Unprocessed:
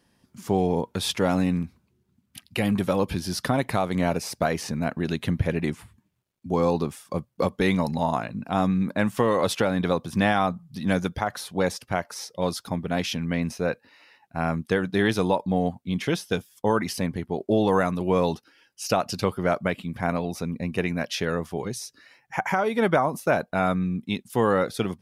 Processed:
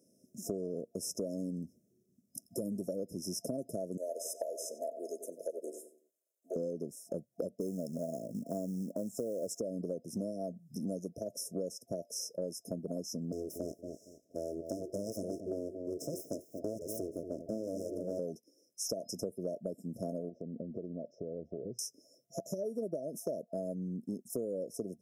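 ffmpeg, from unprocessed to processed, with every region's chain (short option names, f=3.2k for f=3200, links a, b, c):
-filter_complex "[0:a]asettb=1/sr,asplit=3[a][b][c];[a]atrim=end=3.974[d];[b]atrim=start=3.97:end=6.56,asetpts=PTS-STARTPTS,afade=t=in:d=0.004:c=qsin,afade=t=out:st=2.586:d=0.004:c=qsin,highpass=f=510:w=0.5412,highpass=f=510:w=1.3066,bandreject=f=5.6k:w=5.3,asplit=2[e][f];[f]adelay=93,lowpass=f=2k:p=1,volume=-10dB,asplit=2[g][h];[h]adelay=93,lowpass=f=2k:p=1,volume=0.41,asplit=2[i][j];[j]adelay=93,lowpass=f=2k:p=1,volume=0.41,asplit=2[k][l];[l]adelay=93,lowpass=f=2k:p=1,volume=0.41[m];[e][g][i][k][m]amix=inputs=5:normalize=0,atrim=end_sample=114219[n];[c]atrim=start=6.556[o];[d][n]acrossfade=d=0.004:c1=hsin:c2=qsin[p];[p][o]acrossfade=d=0.004:c1=qsin:c2=hsin,asettb=1/sr,asplit=3[q][r][s];[q]atrim=end=7.604[t];[r]atrim=start=7.6:end=9.6,asetpts=PTS-STARTPTS,afade=t=in:d=0.004:c=qsin,afade=t=out:st=1.996:d=0.004:c=qsin,equalizer=f=7.3k:t=o:w=0.25:g=8.5,acrusher=bits=6:mode=log:mix=0:aa=0.000001[u];[s]atrim=start=9.596[v];[t][u]acrossfade=d=0.004:c1=hsin:c2=qsin[w];[w][v]acrossfade=d=0.004:c1=qsin:c2=hsin,asettb=1/sr,asplit=3[x][y][z];[x]atrim=end=13.324[aa];[y]atrim=start=13.32:end=18.19,asetpts=PTS-STARTPTS,afade=t=in:d=0.004:c=qsin,afade=t=out:st=4.866:d=0.004:c=qsin,aeval=exprs='abs(val(0))':c=same,asplit=2[ab][ac];[ac]adelay=231,lowpass=f=1.4k:p=1,volume=-10dB,asplit=2[ad][ae];[ae]adelay=231,lowpass=f=1.4k:p=1,volume=0.23,asplit=2[af][ag];[ag]adelay=231,lowpass=f=1.4k:p=1,volume=0.23[ah];[ab][ad][af][ah]amix=inputs=4:normalize=0,atrim=end_sample=214767[ai];[z]atrim=start=18.186[aj];[aa][ai]acrossfade=d=0.004:c1=hsin:c2=qsin[ak];[ak][aj]acrossfade=d=0.004:c1=qsin:c2=hsin,asettb=1/sr,asplit=3[al][am][an];[al]atrim=end=20.294[ao];[am]atrim=start=20.29:end=21.79,asetpts=PTS-STARTPTS,afade=t=in:d=0.004:c=qsin,afade=t=out:st=1.496:d=0.004:c=qsin,lowpass=f=2.1k:w=0.5412,lowpass=f=2.1k:w=1.3066,asubboost=boost=6.5:cutoff=98,acompressor=threshold=-32dB:ratio=20:attack=3.2:release=140:knee=1:detection=peak[ap];[an]atrim=start=21.786[aq];[ao][ap]acrossfade=d=0.004:c1=hsin:c2=qsin[ar];[ar][aq]acrossfade=d=0.004:c1=qsin:c2=hsin,afftfilt=real='re*(1-between(b*sr/4096,680,5100))':imag='im*(1-between(b*sr/4096,680,5100))':win_size=4096:overlap=0.75,highpass=230,acompressor=threshold=-36dB:ratio=6,volume=1dB"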